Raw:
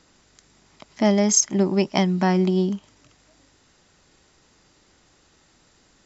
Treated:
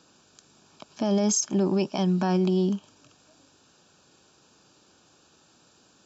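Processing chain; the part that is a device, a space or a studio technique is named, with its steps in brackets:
PA system with an anti-feedback notch (high-pass filter 120 Hz 12 dB per octave; Butterworth band-reject 2,000 Hz, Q 3.7; brickwall limiter −16 dBFS, peak gain reduction 11 dB)

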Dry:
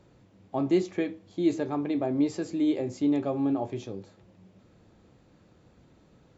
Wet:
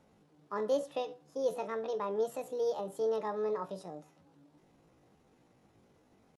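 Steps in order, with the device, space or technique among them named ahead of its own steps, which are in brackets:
chipmunk voice (pitch shifter +7.5 semitones)
level −7 dB

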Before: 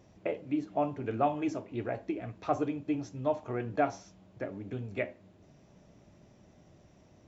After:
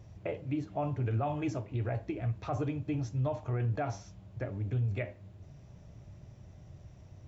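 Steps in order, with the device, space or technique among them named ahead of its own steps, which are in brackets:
car stereo with a boomy subwoofer (low shelf with overshoot 160 Hz +11 dB, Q 1.5; brickwall limiter −24.5 dBFS, peak gain reduction 8 dB)

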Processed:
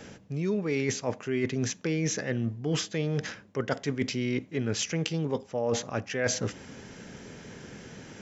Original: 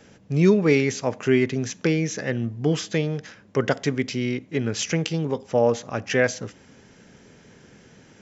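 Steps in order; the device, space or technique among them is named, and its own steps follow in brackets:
compression on the reversed sound (reversed playback; downward compressor 10 to 1, threshold −31 dBFS, peak gain reduction 19 dB; reversed playback)
level +5.5 dB

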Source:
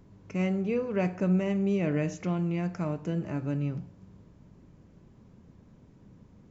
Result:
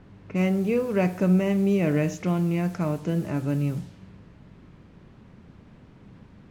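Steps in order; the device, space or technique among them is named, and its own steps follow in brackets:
cassette deck with a dynamic noise filter (white noise bed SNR 27 dB; low-pass that shuts in the quiet parts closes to 1,600 Hz, open at −27 dBFS)
level +5 dB

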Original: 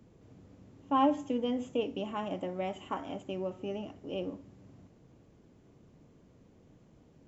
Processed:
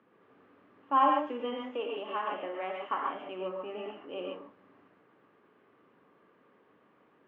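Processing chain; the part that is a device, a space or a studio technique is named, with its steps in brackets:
phone earpiece (loudspeaker in its box 420–3,000 Hz, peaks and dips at 640 Hz −4 dB, 1,200 Hz +9 dB, 1,700 Hz +6 dB)
0:01.71–0:02.81: high-pass filter 250 Hz 12 dB per octave
reverb whose tail is shaped and stops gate 160 ms rising, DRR −0.5 dB

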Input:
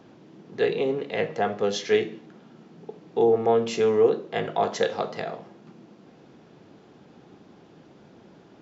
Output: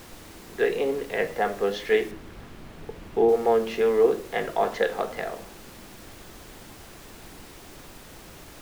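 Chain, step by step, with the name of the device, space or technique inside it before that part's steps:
horn gramophone (band-pass filter 230–3,100 Hz; parametric band 1,800 Hz +5 dB 0.41 octaves; tape wow and flutter; pink noise bed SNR 18 dB)
0:02.11–0:03.29: bass and treble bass +5 dB, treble −10 dB

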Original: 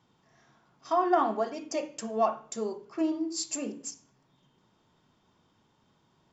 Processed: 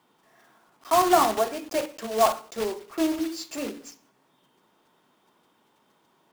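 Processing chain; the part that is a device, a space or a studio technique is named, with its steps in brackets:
early digital voice recorder (band-pass filter 290–3,500 Hz; one scale factor per block 3 bits)
level +5.5 dB

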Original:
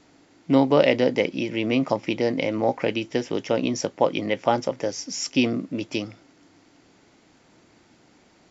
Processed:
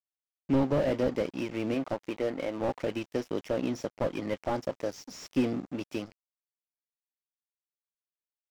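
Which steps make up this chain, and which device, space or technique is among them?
0:01.74–0:02.61: bass and treble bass −8 dB, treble −9 dB
early transistor amplifier (dead-zone distortion −38.5 dBFS; slew-rate limiting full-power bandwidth 59 Hz)
level −4.5 dB

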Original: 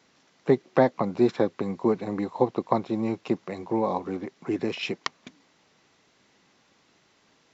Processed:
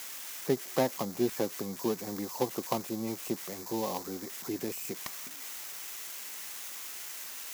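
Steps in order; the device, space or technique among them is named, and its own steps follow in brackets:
budget class-D amplifier (gap after every zero crossing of 0.17 ms; spike at every zero crossing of −17.5 dBFS)
level −8 dB

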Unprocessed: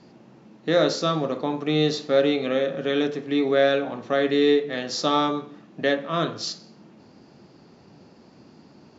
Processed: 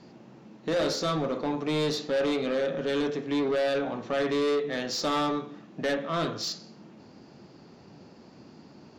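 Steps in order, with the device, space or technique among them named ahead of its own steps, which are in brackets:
saturation between pre-emphasis and de-emphasis (high-shelf EQ 6,200 Hz +7 dB; soft clipping −22.5 dBFS, distortion −8 dB; high-shelf EQ 6,200 Hz −7 dB)

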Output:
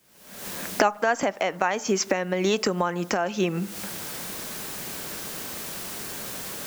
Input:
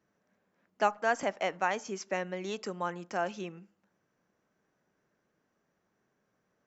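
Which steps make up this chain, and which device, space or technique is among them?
cheap recorder with automatic gain (white noise bed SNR 34 dB; camcorder AGC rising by 64 dB per second)
level +5 dB

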